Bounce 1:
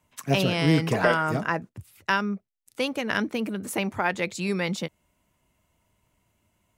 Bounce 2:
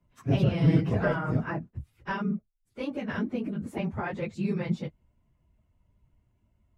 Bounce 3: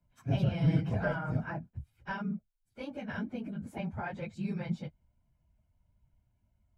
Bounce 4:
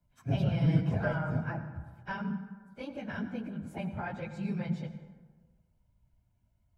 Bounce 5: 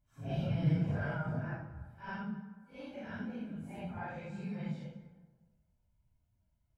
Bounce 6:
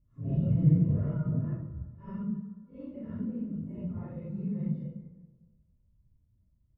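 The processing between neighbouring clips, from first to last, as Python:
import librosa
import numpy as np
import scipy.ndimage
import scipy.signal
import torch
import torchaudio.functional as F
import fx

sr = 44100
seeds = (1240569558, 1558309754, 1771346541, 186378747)

y1 = fx.phase_scramble(x, sr, seeds[0], window_ms=50)
y1 = fx.riaa(y1, sr, side='playback')
y1 = F.gain(torch.from_numpy(y1), -8.5).numpy()
y2 = y1 + 0.46 * np.pad(y1, (int(1.3 * sr / 1000.0), 0))[:len(y1)]
y2 = F.gain(torch.from_numpy(y2), -6.5).numpy()
y3 = fx.rev_plate(y2, sr, seeds[1], rt60_s=1.4, hf_ratio=0.5, predelay_ms=75, drr_db=10.0)
y4 = fx.phase_scramble(y3, sr, seeds[2], window_ms=200)
y4 = F.gain(torch.from_numpy(y4), -5.0).numpy()
y5 = scipy.signal.lfilter(np.full(56, 1.0 / 56), 1.0, y4)
y5 = F.gain(torch.from_numpy(y5), 8.0).numpy()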